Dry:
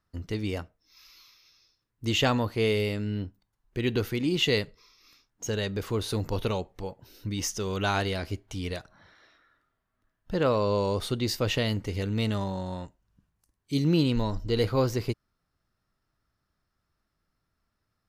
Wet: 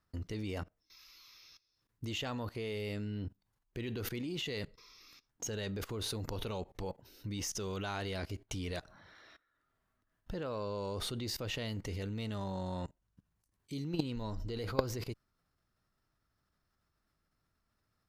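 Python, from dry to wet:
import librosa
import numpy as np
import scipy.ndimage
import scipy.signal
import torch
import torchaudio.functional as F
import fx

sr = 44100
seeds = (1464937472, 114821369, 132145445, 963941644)

y = fx.level_steps(x, sr, step_db=21)
y = fx.cheby_harmonics(y, sr, harmonics=(2,), levels_db=(-10,), full_scale_db=-17.0)
y = y * 10.0 ** (4.0 / 20.0)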